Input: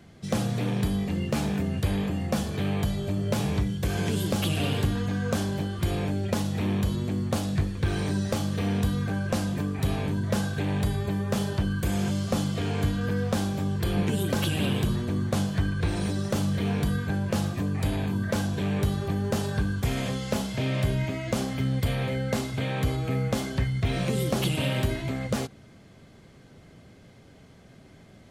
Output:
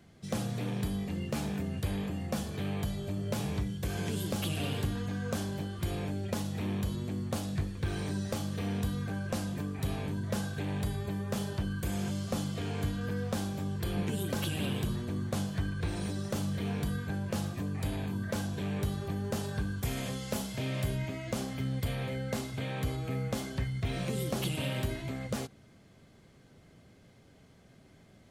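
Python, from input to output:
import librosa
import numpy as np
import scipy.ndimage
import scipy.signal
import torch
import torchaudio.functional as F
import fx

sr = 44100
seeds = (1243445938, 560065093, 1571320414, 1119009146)

y = fx.high_shelf(x, sr, hz=7800.0, db=fx.steps((0.0, 4.0), (19.81, 10.5), (20.96, 4.0)))
y = F.gain(torch.from_numpy(y), -7.0).numpy()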